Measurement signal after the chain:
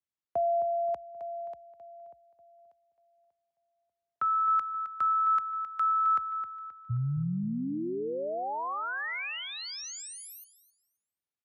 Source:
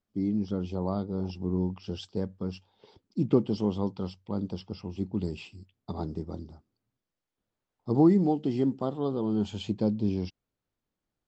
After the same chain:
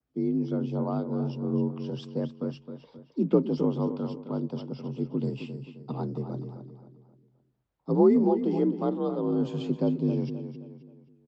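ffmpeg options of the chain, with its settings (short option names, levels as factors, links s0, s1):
-filter_complex "[0:a]acrossover=split=110[s0][s1];[s0]acontrast=31[s2];[s1]adynamicequalizer=threshold=0.00141:dfrequency=3400:dqfactor=2.4:tfrequency=3400:tqfactor=2.4:attack=5:release=100:ratio=0.375:range=2:mode=cutabove:tftype=bell[s3];[s2][s3]amix=inputs=2:normalize=0,afreqshift=47,aemphasis=mode=reproduction:type=50fm,asplit=2[s4][s5];[s5]adelay=264,lowpass=f=4800:p=1,volume=0.335,asplit=2[s6][s7];[s7]adelay=264,lowpass=f=4800:p=1,volume=0.4,asplit=2[s8][s9];[s9]adelay=264,lowpass=f=4800:p=1,volume=0.4,asplit=2[s10][s11];[s11]adelay=264,lowpass=f=4800:p=1,volume=0.4[s12];[s4][s6][s8][s10][s12]amix=inputs=5:normalize=0"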